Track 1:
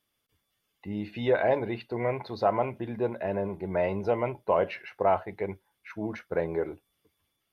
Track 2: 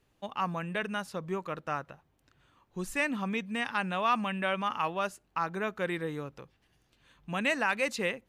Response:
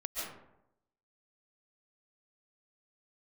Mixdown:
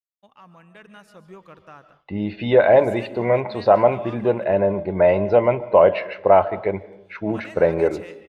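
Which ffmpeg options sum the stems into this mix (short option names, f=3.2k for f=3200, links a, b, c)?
-filter_complex "[0:a]lowpass=f=4.6k:w=0.5412,lowpass=f=4.6k:w=1.3066,equalizer=f=580:t=o:w=0.27:g=6.5,adelay=1250,volume=2.5dB,asplit=2[a][b];[b]volume=-18.5dB[c];[1:a]asoftclip=type=tanh:threshold=-19.5dB,alimiter=limit=-24dB:level=0:latency=1,volume=-16dB,asplit=3[d][e][f];[d]atrim=end=4.44,asetpts=PTS-STARTPTS,afade=t=out:st=4.436:d=0.004:c=hsin[g];[e]atrim=start=4.44:end=6.58,asetpts=PTS-STARTPTS,volume=0[h];[f]atrim=start=6.58,asetpts=PTS-STARTPTS,afade=t=in:d=0.004:c=hsin[i];[g][h][i]concat=n=3:v=0:a=1,asplit=2[j][k];[k]volume=-11.5dB[l];[2:a]atrim=start_sample=2205[m];[c][l]amix=inputs=2:normalize=0[n];[n][m]afir=irnorm=-1:irlink=0[o];[a][j][o]amix=inputs=3:normalize=0,agate=range=-33dB:threshold=-56dB:ratio=3:detection=peak,dynaudnorm=f=650:g=3:m=7dB"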